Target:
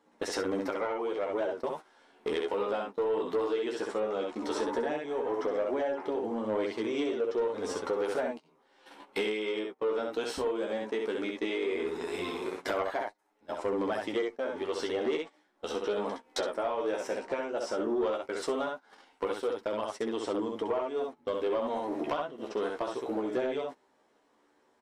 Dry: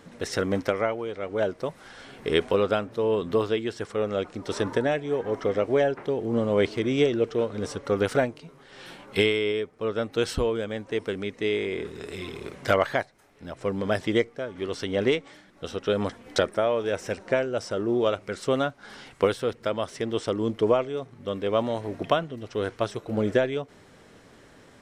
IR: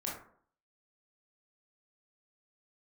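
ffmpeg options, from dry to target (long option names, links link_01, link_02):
-filter_complex "[0:a]equalizer=frequency=900:width=2.2:gain=9.5,asplit=2[link_01][link_02];[link_02]aecho=0:1:13|65:0.266|0.596[link_03];[link_01][link_03]amix=inputs=2:normalize=0,acompressor=threshold=-28dB:ratio=4,flanger=delay=9.3:depth=6.7:regen=17:speed=0.15:shape=triangular,lowshelf=frequency=190:width_type=q:width=1.5:gain=-13,asoftclip=type=tanh:threshold=-24.5dB,agate=range=-19dB:threshold=-41dB:ratio=16:detection=peak,volume=2.5dB"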